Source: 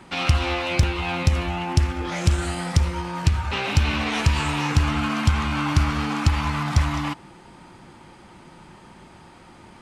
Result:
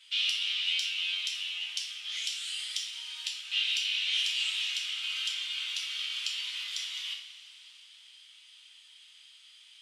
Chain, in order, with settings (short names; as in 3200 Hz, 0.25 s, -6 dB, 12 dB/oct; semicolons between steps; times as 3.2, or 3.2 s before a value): in parallel at 0 dB: compressor, threshold -26 dBFS, peak gain reduction 13.5 dB; on the sum: ladder high-pass 2900 Hz, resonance 65%; two-slope reverb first 0.53 s, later 4 s, from -18 dB, DRR -2.5 dB; gain -3 dB